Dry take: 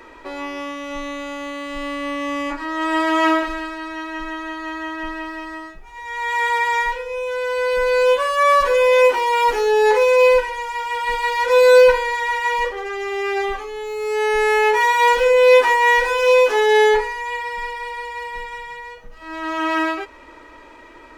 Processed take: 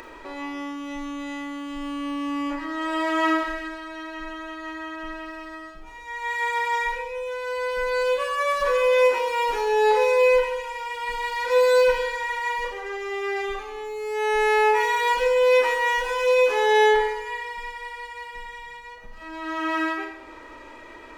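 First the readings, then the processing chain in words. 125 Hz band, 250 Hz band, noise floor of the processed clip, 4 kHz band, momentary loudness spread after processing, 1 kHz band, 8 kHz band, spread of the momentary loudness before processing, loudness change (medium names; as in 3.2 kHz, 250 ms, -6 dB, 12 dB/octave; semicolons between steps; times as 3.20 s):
no reading, -3.5 dB, -43 dBFS, -5.0 dB, 18 LU, -5.5 dB, -5.5 dB, 16 LU, -5.5 dB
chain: upward compressor, threshold -29 dBFS; Schroeder reverb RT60 0.89 s, combs from 28 ms, DRR 4.5 dB; trim -7 dB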